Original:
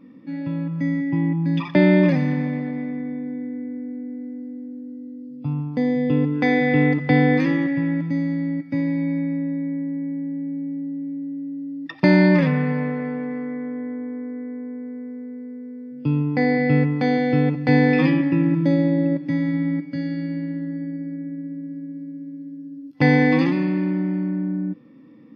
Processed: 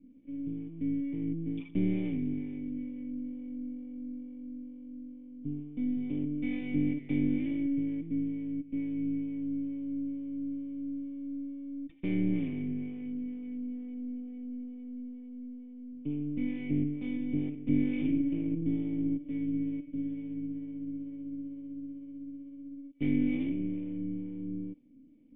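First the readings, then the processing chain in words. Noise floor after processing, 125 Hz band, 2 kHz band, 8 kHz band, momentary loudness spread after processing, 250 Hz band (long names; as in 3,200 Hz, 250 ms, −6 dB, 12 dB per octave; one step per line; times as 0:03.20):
−49 dBFS, −16.0 dB, −24.0 dB, can't be measured, 13 LU, −11.0 dB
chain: half-wave rectification
two-band tremolo in antiphase 2.2 Hz, depth 50%, crossover 420 Hz
formant resonators in series i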